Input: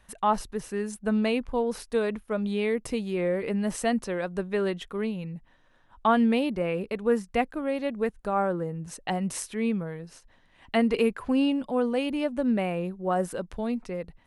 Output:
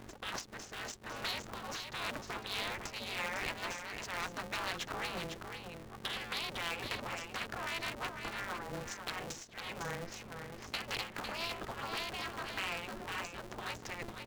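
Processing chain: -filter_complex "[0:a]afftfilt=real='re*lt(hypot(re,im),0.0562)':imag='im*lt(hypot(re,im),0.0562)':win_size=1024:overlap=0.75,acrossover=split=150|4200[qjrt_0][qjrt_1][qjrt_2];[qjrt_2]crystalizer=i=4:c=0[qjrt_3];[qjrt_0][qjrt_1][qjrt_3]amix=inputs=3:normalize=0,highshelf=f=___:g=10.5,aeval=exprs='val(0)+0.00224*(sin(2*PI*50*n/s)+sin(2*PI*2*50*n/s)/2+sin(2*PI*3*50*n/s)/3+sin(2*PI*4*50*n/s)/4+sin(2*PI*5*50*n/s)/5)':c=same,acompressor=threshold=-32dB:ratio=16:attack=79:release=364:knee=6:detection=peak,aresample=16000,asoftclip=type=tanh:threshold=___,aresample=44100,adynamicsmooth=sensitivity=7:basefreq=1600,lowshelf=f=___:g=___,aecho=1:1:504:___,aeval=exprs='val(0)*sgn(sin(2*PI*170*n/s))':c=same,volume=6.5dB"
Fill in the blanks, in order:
4900, -31.5dB, 66, -12, 0.473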